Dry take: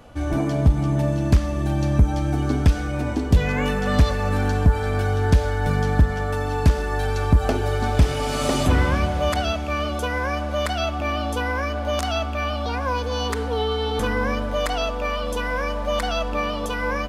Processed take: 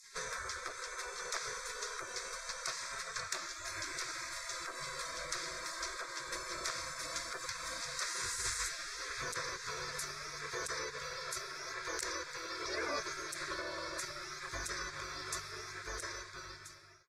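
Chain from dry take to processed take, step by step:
fade-out on the ending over 3.61 s
three-way crossover with the lows and the highs turned down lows −13 dB, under 260 Hz, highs −24 dB, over 7,500 Hz
mains-hum notches 50/100/150/200/250/300/350/400/450/500 Hz
downward compressor 6 to 1, threshold −33 dBFS, peak gain reduction 13.5 dB
sound drawn into the spectrogram fall, 0:12.62–0:13.00, 280–1,900 Hz −29 dBFS
dynamic equaliser 1,600 Hz, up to −3 dB, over −52 dBFS, Q 1.3
gate on every frequency bin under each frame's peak −25 dB weak
phaser with its sweep stopped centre 800 Hz, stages 6
level +17 dB
AAC 64 kbit/s 44,100 Hz

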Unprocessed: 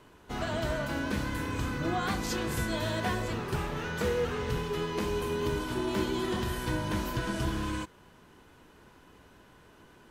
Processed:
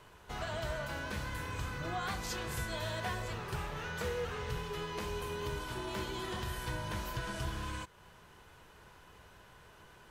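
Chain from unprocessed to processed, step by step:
parametric band 270 Hz −12 dB 0.94 octaves
in parallel at +3 dB: downward compressor, threshold −46 dBFS, peak gain reduction 17 dB
on the sum: level −6.5 dB

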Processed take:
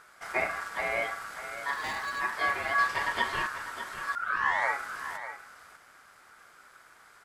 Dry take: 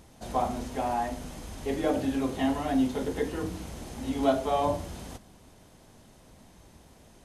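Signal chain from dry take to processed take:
0:02.78–0:03.47: parametric band 2,000 Hz +8.5 dB 2.8 octaves
0:04.15: tape start 0.61 s
ring modulation 1,400 Hz
0:01.73–0:02.20: hard clipping −32 dBFS, distortion −14 dB
single-tap delay 597 ms −11.5 dB
level +1 dB

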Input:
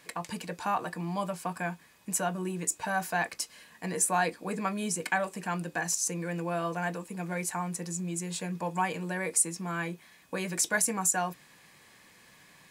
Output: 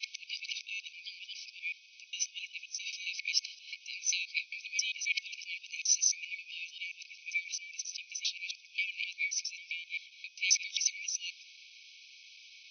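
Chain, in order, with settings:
reversed piece by piece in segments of 133 ms
brick-wall band-pass 2,200–6,200 Hz
level +8.5 dB

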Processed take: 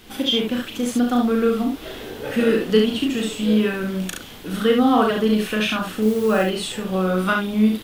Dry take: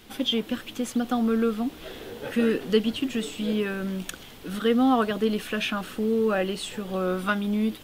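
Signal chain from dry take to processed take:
0:06.02–0:06.43: bit-depth reduction 8 bits, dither triangular
ambience of single reflections 37 ms −4 dB, 70 ms −4 dB
level +3.5 dB

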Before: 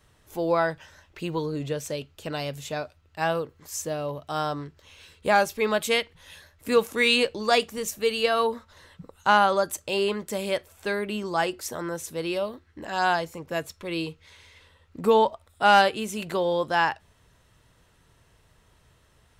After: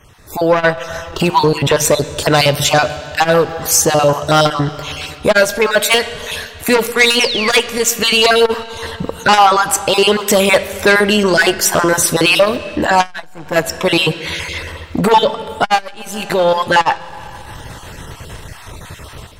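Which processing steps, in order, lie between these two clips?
time-frequency cells dropped at random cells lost 27%
dynamic equaliser 250 Hz, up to −6 dB, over −38 dBFS, Q 0.71
in parallel at +1 dB: downward compressor, threshold −39 dBFS, peak gain reduction 21.5 dB
on the sum: sound drawn into the spectrogram fall, 0:07.20–0:07.53, 1,600–6,200 Hz −33 dBFS
automatic gain control gain up to 15 dB
sine wavefolder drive 7 dB, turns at −1 dBFS
convolution reverb RT60 2.5 s, pre-delay 5 ms, DRR 13 dB
saturating transformer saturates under 430 Hz
level −2 dB

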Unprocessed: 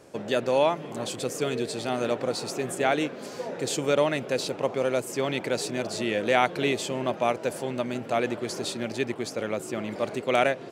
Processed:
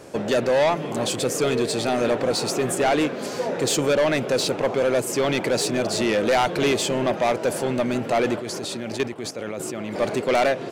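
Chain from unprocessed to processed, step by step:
0:08.35–0:09.95: output level in coarse steps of 13 dB
soft clipping −24 dBFS, distortion −8 dB
level +9 dB

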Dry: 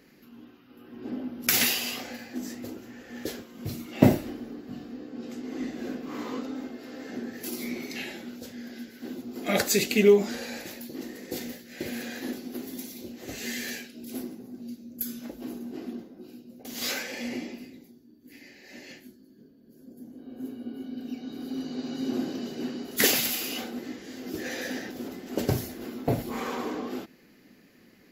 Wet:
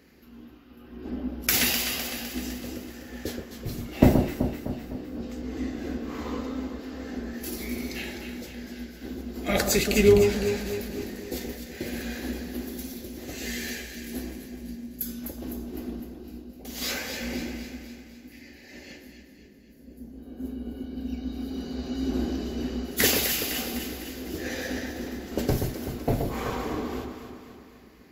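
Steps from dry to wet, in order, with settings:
sub-octave generator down 2 octaves, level −5 dB
delay that swaps between a low-pass and a high-pass 127 ms, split 1,400 Hz, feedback 73%, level −5 dB

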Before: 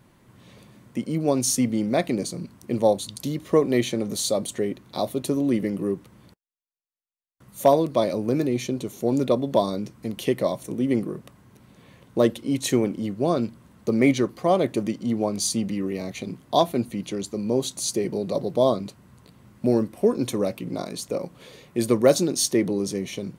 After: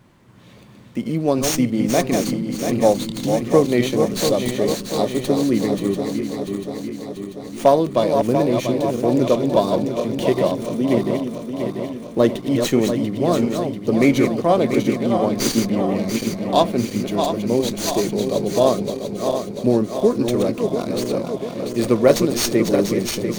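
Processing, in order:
feedback delay that plays each chunk backwards 345 ms, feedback 76%, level −6 dB
windowed peak hold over 3 samples
level +3.5 dB

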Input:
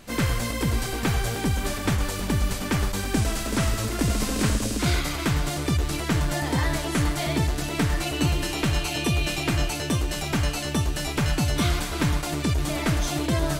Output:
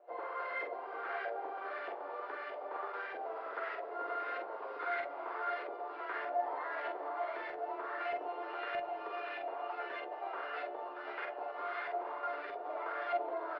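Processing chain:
stylus tracing distortion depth 0.22 ms
Butterworth high-pass 390 Hz 48 dB per octave
brickwall limiter −21 dBFS, peak gain reduction 8 dB
Chebyshev low-pass filter 4,900 Hz, order 4
tuned comb filter 700 Hz, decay 0.23 s, harmonics all, mix 80%
auto-filter low-pass saw up 1.6 Hz 650–1,900 Hz
flanger 0.23 Hz, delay 8.4 ms, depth 6.1 ms, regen +52%
double-tracking delay 45 ms −5 dB
delay with a low-pass on its return 67 ms, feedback 85%, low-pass 770 Hz, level −12 dB
level +6 dB

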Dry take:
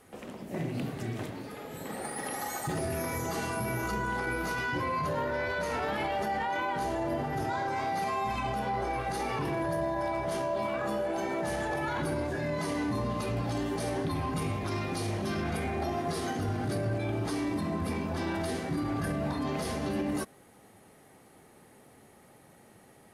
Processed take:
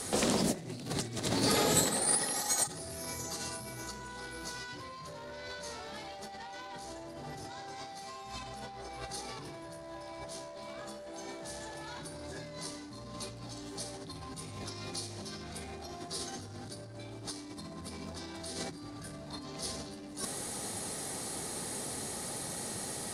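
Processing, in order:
sine wavefolder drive 4 dB, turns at −21 dBFS
compressor whose output falls as the input rises −34 dBFS, ratio −0.5
flat-topped bell 6,100 Hz +13.5 dB
level −4 dB

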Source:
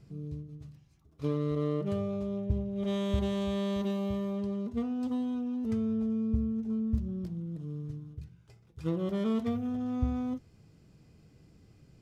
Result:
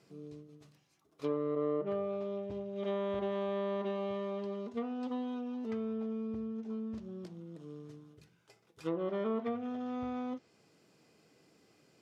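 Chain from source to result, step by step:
high-pass filter 390 Hz 12 dB per octave
treble cut that deepens with the level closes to 1,400 Hz, closed at −32 dBFS
level +2.5 dB

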